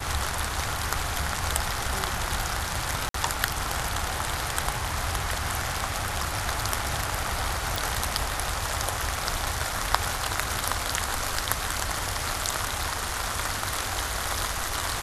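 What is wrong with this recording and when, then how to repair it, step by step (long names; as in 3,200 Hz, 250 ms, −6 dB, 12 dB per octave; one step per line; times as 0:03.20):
0:03.09–0:03.14: drop-out 53 ms
0:07.76: click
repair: click removal
repair the gap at 0:03.09, 53 ms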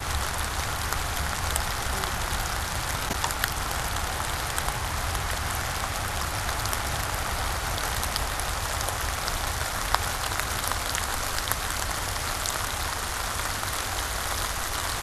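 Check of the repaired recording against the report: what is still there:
none of them is left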